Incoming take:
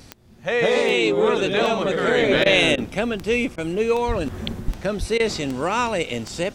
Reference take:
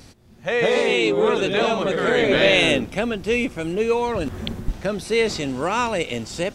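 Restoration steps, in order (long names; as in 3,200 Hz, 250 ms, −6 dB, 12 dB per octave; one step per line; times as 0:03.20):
click removal
0:04.07–0:04.19: high-pass filter 140 Hz 24 dB per octave
0:04.99–0:05.11: high-pass filter 140 Hz 24 dB per octave
repair the gap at 0:02.44/0:02.76/0:03.56/0:05.18, 17 ms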